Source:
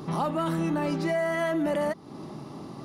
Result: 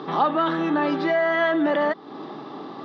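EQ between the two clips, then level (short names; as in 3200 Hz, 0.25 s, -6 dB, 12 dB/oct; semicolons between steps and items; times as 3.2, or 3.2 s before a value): speaker cabinet 250–4500 Hz, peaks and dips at 290 Hz +5 dB, 440 Hz +7 dB, 790 Hz +7 dB, 1200 Hz +7 dB, 1700 Hz +9 dB, 3500 Hz +10 dB; +2.0 dB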